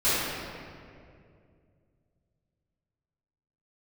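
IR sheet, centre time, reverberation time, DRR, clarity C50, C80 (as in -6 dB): 0.159 s, 2.4 s, -16.5 dB, -5.0 dB, -2.0 dB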